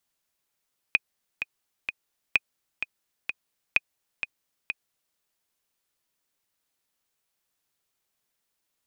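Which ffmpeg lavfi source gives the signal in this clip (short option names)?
-f lavfi -i "aevalsrc='pow(10,(-6-9.5*gte(mod(t,3*60/128),60/128))/20)*sin(2*PI*2490*mod(t,60/128))*exp(-6.91*mod(t,60/128)/0.03)':d=4.21:s=44100"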